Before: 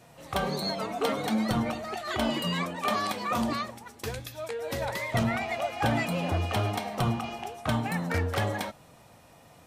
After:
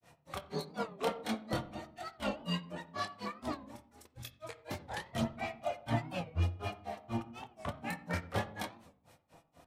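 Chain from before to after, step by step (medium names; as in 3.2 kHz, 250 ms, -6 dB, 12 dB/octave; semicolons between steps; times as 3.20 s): harmonic tremolo 7.4 Hz, depth 50%, crossover 1.2 kHz; chorus voices 2, 0.46 Hz, delay 27 ms, depth 3.6 ms; granulator 176 ms, grains 4.1 per s, spray 23 ms, pitch spread up and down by 0 st; on a send at -10 dB: reverberation RT60 0.55 s, pre-delay 10 ms; on the sum: warped record 45 rpm, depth 160 cents; trim +1 dB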